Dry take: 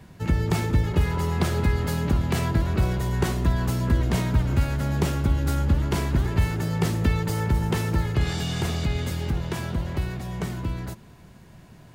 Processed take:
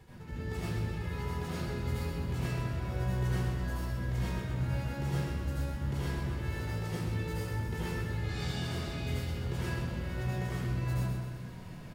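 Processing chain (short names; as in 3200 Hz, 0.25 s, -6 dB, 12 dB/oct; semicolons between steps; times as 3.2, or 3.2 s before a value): reverse; compressor 12:1, threshold -33 dBFS, peak gain reduction 18.5 dB; reverse; feedback echo 0.128 s, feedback 54%, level -6.5 dB; reverb RT60 0.70 s, pre-delay 69 ms, DRR -8.5 dB; gain -8.5 dB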